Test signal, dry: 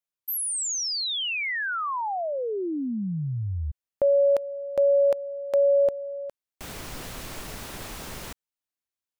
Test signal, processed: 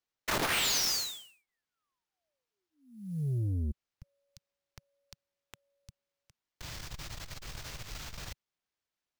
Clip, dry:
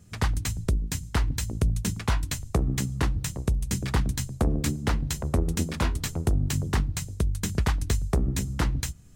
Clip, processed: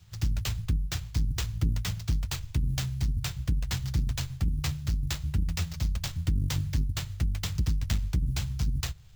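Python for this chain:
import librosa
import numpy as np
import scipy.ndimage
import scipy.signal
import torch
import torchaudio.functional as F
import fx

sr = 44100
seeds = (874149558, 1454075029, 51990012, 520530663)

y = scipy.signal.sosfilt(scipy.signal.cheby2(5, 60, [320.0, 2200.0], 'bandstop', fs=sr, output='sos'), x)
y = fx.sample_hold(y, sr, seeds[0], rate_hz=11000.0, jitter_pct=20)
y = fx.transformer_sat(y, sr, knee_hz=110.0)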